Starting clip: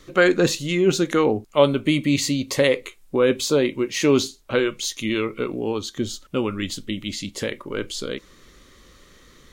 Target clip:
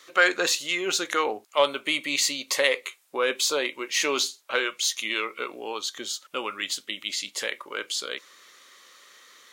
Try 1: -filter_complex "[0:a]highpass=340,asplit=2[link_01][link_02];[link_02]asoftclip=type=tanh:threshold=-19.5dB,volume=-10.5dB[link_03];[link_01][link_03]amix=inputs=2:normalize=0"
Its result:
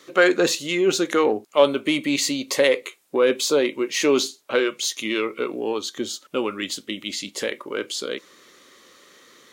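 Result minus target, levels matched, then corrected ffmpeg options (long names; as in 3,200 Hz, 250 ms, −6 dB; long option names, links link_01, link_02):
250 Hz band +9.0 dB
-filter_complex "[0:a]highpass=830,asplit=2[link_01][link_02];[link_02]asoftclip=type=tanh:threshold=-19.5dB,volume=-10.5dB[link_03];[link_01][link_03]amix=inputs=2:normalize=0"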